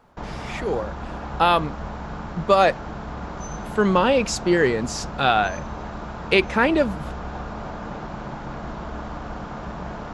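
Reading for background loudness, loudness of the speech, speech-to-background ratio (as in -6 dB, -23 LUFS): -33.5 LUFS, -21.0 LUFS, 12.5 dB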